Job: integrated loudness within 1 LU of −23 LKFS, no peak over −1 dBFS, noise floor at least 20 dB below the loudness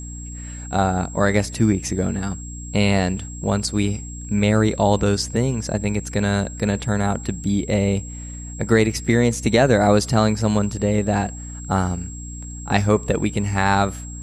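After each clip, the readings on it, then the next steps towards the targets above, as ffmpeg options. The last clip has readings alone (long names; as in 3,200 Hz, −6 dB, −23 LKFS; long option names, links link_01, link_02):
mains hum 60 Hz; hum harmonics up to 300 Hz; level of the hum −31 dBFS; interfering tone 7,600 Hz; level of the tone −37 dBFS; integrated loudness −20.5 LKFS; sample peak −3.0 dBFS; target loudness −23.0 LKFS
→ -af "bandreject=frequency=60:width_type=h:width=4,bandreject=frequency=120:width_type=h:width=4,bandreject=frequency=180:width_type=h:width=4,bandreject=frequency=240:width_type=h:width=4,bandreject=frequency=300:width_type=h:width=4"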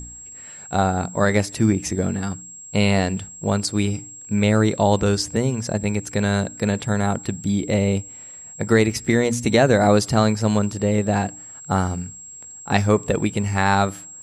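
mains hum none found; interfering tone 7,600 Hz; level of the tone −37 dBFS
→ -af "bandreject=frequency=7600:width=30"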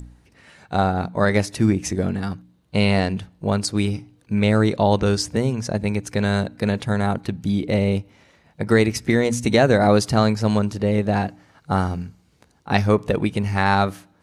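interfering tone none found; integrated loudness −21.0 LKFS; sample peak −3.5 dBFS; target loudness −23.0 LKFS
→ -af "volume=-2dB"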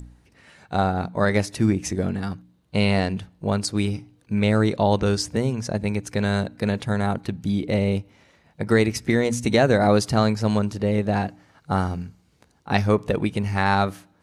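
integrated loudness −23.0 LKFS; sample peak −5.5 dBFS; background noise floor −61 dBFS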